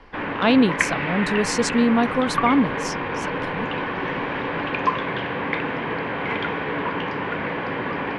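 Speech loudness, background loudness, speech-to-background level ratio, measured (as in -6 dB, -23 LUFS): -21.0 LUFS, -25.5 LUFS, 4.5 dB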